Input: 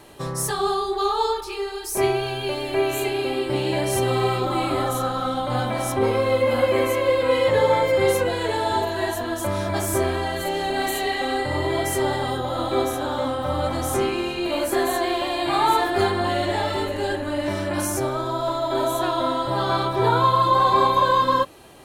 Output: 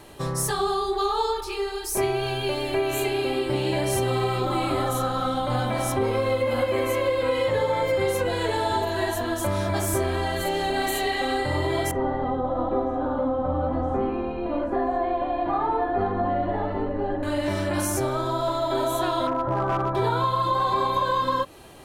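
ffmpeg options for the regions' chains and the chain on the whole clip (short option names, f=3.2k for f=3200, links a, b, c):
-filter_complex "[0:a]asettb=1/sr,asplit=3[a][b][c];[a]atrim=end=11.914[d];[b]atrim=start=11.91:end=17.23,asetpts=PTS-STARTPTS,afade=t=in:d=0.004:c=qsin,afade=t=out:st=5.316:d=0.004:c=qsin,lowpass=1k,aecho=1:1:4.1:0.58,atrim=end_sample=234612[e];[c]atrim=start=17.226[f];[d][e]acrossfade=d=0.004:c1=hsin:c2=qsin[g];[g][f]acrossfade=d=0.004:c1=qsin:c2=hsin,asettb=1/sr,asplit=3[h][i][j];[h]atrim=end=19.274[k];[i]atrim=start=19.27:end=19.95,asetpts=PTS-STARTPTS,afade=t=in:d=0.004:c=qsin,afade=t=out:st=0.676:d=0.004:c=qsin,lowpass=f=1.6k:w=0.5412,lowpass=f=1.6k:w=1.3066,volume=17dB,asoftclip=hard,volume=-17dB[l];[j]atrim=start=19.946[m];[k][l]acrossfade=d=0.004:c1=hsin:c2=qsin[n];[n][m]acrossfade=d=0.004:c1=qsin:c2=hsin,lowshelf=f=80:g=6,acompressor=threshold=-20dB:ratio=6"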